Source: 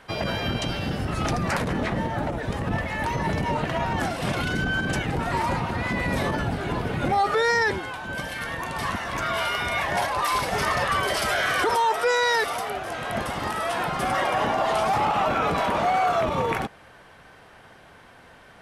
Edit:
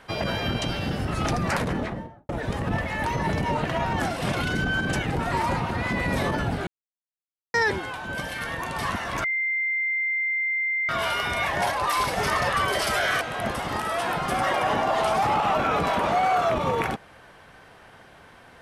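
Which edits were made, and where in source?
1.62–2.29 s: studio fade out
6.67–7.54 s: mute
9.24 s: add tone 2.09 kHz -22.5 dBFS 1.65 s
11.56–12.92 s: delete

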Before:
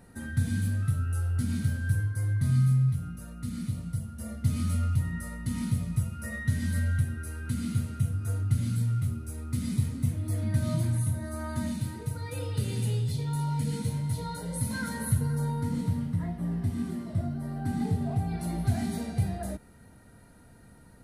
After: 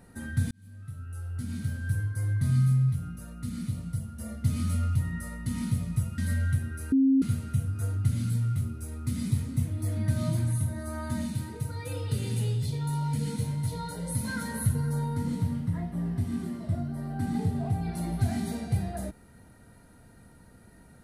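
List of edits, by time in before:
0.51–2.29 s: fade in
6.18–6.64 s: delete
7.38–7.68 s: bleep 268 Hz -18 dBFS

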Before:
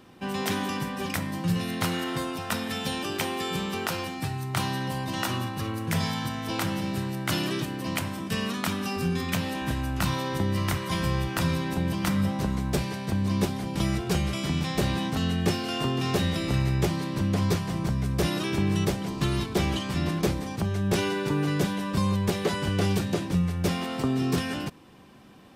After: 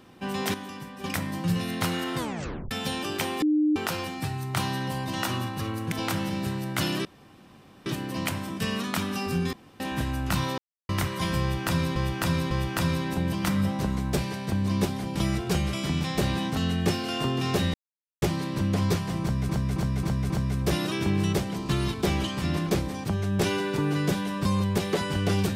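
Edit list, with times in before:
0.54–1.04 s: gain -9 dB
2.18 s: tape stop 0.53 s
3.42–3.76 s: bleep 303 Hz -19 dBFS
5.92–6.43 s: delete
7.56 s: insert room tone 0.81 s
9.23–9.50 s: room tone
10.28–10.59 s: mute
11.11–11.66 s: loop, 3 plays
16.34–16.82 s: mute
17.82–18.09 s: loop, 5 plays

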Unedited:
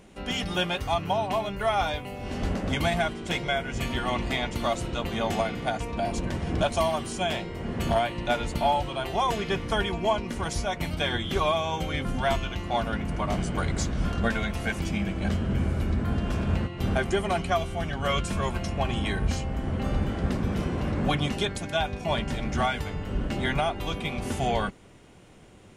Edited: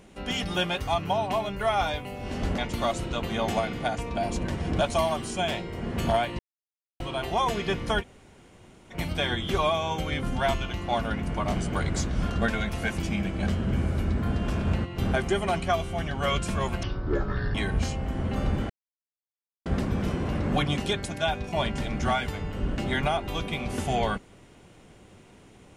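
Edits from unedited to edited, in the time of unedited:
2.58–4.40 s: delete
8.21–8.82 s: mute
9.83–10.75 s: room tone, crossfade 0.06 s
18.65–19.03 s: speed 53%
20.18 s: insert silence 0.96 s

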